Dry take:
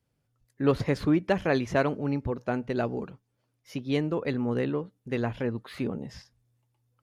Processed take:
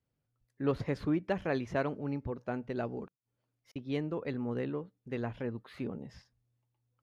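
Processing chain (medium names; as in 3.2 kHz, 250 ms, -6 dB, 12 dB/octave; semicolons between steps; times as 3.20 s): 3.05–3.76 s: inverted gate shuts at -37 dBFS, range -41 dB; treble shelf 4.7 kHz -7.5 dB; trim -7 dB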